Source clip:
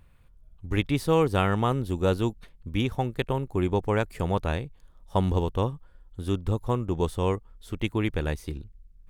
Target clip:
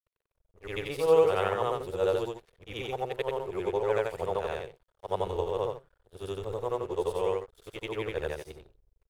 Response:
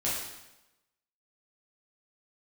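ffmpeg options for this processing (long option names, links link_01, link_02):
-af "afftfilt=real='re':imag='-im':win_size=8192:overlap=0.75,aeval=exprs='sgn(val(0))*max(abs(val(0))-0.00224,0)':channel_layout=same,lowshelf=frequency=340:width_type=q:width=3:gain=-9"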